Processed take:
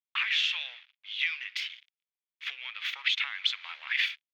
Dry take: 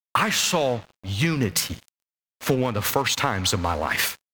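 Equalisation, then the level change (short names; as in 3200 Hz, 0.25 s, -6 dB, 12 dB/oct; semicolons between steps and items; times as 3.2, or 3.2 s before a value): ladder high-pass 2000 Hz, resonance 55%; air absorption 280 m; bell 3400 Hz +9.5 dB 0.26 oct; +5.0 dB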